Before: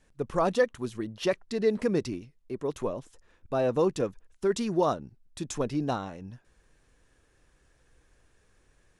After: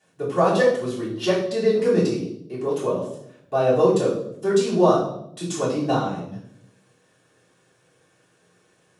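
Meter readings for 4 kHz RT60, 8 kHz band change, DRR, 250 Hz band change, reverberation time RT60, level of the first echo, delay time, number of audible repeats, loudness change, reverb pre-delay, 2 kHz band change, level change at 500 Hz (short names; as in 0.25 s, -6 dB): 0.60 s, +6.5 dB, -8.5 dB, +7.0 dB, 0.75 s, none, none, none, +8.0 dB, 3 ms, +6.5 dB, +8.5 dB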